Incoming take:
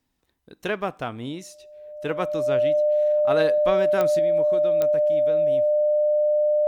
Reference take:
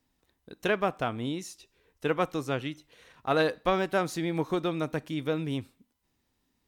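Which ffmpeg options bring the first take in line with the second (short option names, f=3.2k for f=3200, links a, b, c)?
-af "adeclick=t=4,bandreject=f=600:w=30,asetnsamples=n=441:p=0,asendcmd='4.19 volume volume 7dB',volume=0dB"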